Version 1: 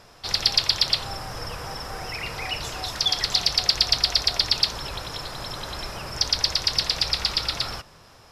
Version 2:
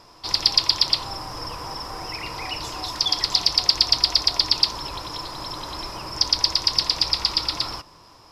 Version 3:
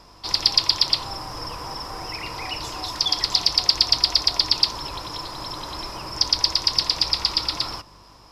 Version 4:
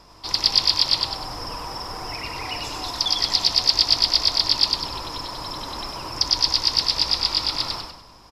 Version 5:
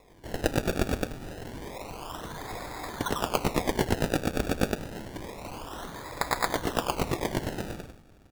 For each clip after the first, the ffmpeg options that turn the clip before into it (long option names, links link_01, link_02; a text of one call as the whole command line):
ffmpeg -i in.wav -af "equalizer=frequency=315:width_type=o:width=0.33:gain=10,equalizer=frequency=1000:width_type=o:width=0.33:gain=11,equalizer=frequency=1600:width_type=o:width=0.33:gain=-4,equalizer=frequency=5000:width_type=o:width=0.33:gain=7,volume=-2.5dB" out.wav
ffmpeg -i in.wav -af "aeval=exprs='val(0)+0.002*(sin(2*PI*50*n/s)+sin(2*PI*2*50*n/s)/2+sin(2*PI*3*50*n/s)/3+sin(2*PI*4*50*n/s)/4+sin(2*PI*5*50*n/s)/5)':channel_layout=same" out.wav
ffmpeg -i in.wav -filter_complex "[0:a]asplit=6[link_01][link_02][link_03][link_04][link_05][link_06];[link_02]adelay=98,afreqshift=-38,volume=-3.5dB[link_07];[link_03]adelay=196,afreqshift=-76,volume=-12.1dB[link_08];[link_04]adelay=294,afreqshift=-114,volume=-20.8dB[link_09];[link_05]adelay=392,afreqshift=-152,volume=-29.4dB[link_10];[link_06]adelay=490,afreqshift=-190,volume=-38dB[link_11];[link_01][link_07][link_08][link_09][link_10][link_11]amix=inputs=6:normalize=0,volume=-1dB" out.wav
ffmpeg -i in.wav -af "acrusher=samples=29:mix=1:aa=0.000001:lfo=1:lforange=29:lforate=0.28,volume=-7.5dB" out.wav